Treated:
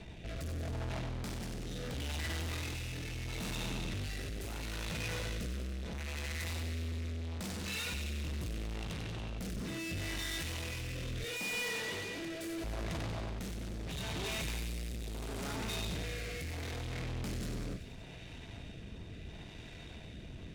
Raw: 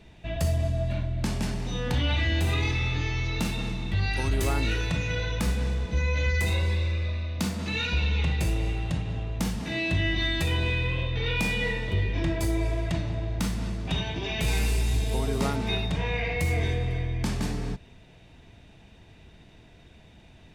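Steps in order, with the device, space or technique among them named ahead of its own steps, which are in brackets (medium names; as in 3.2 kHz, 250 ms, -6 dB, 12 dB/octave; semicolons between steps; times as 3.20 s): 11.24–12.64 s: high-pass 270 Hz 12 dB/octave; overdriven rotary cabinet (valve stage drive 45 dB, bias 0.45; rotary cabinet horn 0.75 Hz); feedback echo behind a high-pass 94 ms, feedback 65%, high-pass 2 kHz, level -7.5 dB; trim +8.5 dB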